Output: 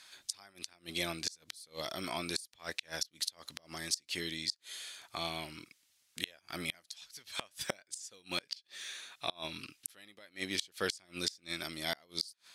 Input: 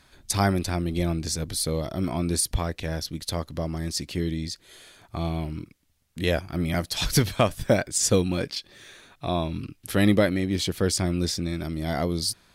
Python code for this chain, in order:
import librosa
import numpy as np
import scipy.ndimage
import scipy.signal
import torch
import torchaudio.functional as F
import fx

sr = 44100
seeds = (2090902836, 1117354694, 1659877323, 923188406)

y = fx.bandpass_q(x, sr, hz=5600.0, q=0.52)
y = fx.gate_flip(y, sr, shuts_db=-24.0, range_db=-29)
y = y * librosa.db_to_amplitude(6.0)